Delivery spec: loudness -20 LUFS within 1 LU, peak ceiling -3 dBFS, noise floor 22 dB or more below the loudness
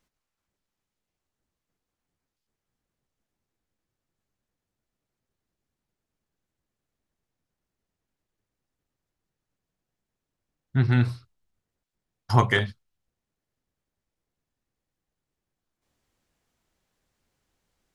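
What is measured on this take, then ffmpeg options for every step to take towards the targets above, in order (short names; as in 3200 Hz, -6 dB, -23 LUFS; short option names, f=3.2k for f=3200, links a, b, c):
loudness -24.0 LUFS; peak -3.5 dBFS; loudness target -20.0 LUFS
-> -af "volume=4dB,alimiter=limit=-3dB:level=0:latency=1"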